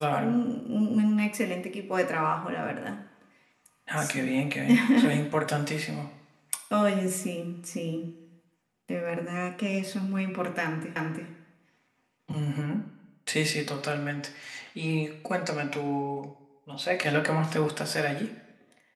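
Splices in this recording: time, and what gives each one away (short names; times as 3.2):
10.96 repeat of the last 0.33 s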